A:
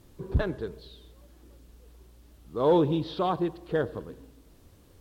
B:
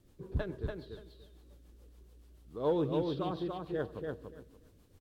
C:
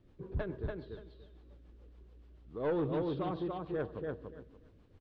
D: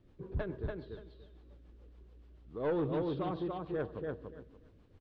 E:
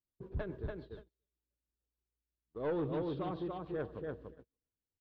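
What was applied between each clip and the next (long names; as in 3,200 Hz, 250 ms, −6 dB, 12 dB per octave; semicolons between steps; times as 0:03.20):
rotating-speaker cabinet horn 7 Hz; on a send: repeating echo 288 ms, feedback 17%, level −4 dB; on the sum: level −7 dB
soft clipping −28 dBFS, distortion −14 dB; low-pass filter 2,900 Hz 12 dB per octave; level +1 dB
no processing that can be heard
noise gate −47 dBFS, range −34 dB; level −2.5 dB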